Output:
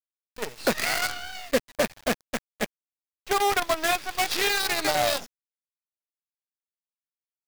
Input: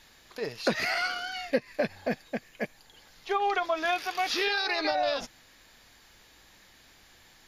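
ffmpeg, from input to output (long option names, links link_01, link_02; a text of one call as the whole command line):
ffmpeg -i in.wav -af "agate=range=-33dB:threshold=-46dB:ratio=3:detection=peak,acrusher=bits=5:mode=log:mix=0:aa=0.000001,anlmdn=0.00398,acrusher=bits=5:dc=4:mix=0:aa=0.000001,volume=2.5dB" out.wav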